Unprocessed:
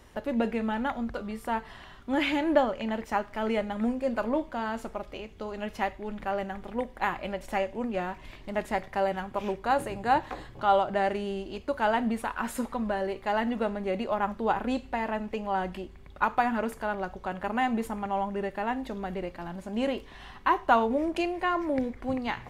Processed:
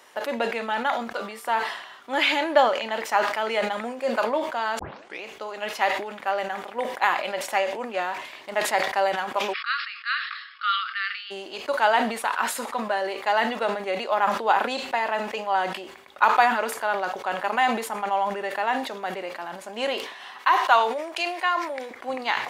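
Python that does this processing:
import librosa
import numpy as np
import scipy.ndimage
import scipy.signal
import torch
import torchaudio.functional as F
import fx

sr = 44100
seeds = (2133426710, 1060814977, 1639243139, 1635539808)

y = fx.brickwall_bandpass(x, sr, low_hz=1100.0, high_hz=5400.0, at=(9.52, 11.3), fade=0.02)
y = fx.highpass(y, sr, hz=880.0, slope=6, at=(20.39, 21.91))
y = fx.edit(y, sr, fx.tape_start(start_s=4.79, length_s=0.45), tone=tone)
y = scipy.signal.sosfilt(scipy.signal.butter(2, 620.0, 'highpass', fs=sr, output='sos'), y)
y = fx.dynamic_eq(y, sr, hz=4200.0, q=1.6, threshold_db=-52.0, ratio=4.0, max_db=5)
y = fx.sustainer(y, sr, db_per_s=70.0)
y = F.gain(torch.from_numpy(y), 7.0).numpy()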